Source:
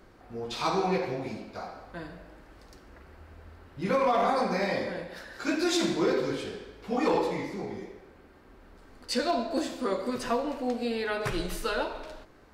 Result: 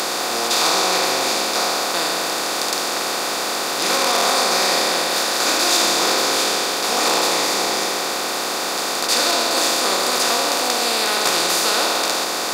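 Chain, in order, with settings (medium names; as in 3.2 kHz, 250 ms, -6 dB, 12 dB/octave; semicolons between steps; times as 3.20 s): spectral levelling over time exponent 0.2; high-pass 150 Hz 12 dB/octave; tilt EQ +4 dB/octave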